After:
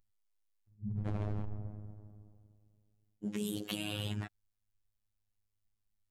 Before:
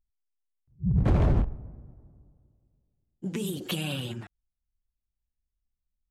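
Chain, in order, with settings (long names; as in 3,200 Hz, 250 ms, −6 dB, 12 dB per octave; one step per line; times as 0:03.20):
reversed playback
downward compressor 6 to 1, threshold −35 dBFS, peak gain reduction 15.5 dB
reversed playback
phases set to zero 104 Hz
level +3.5 dB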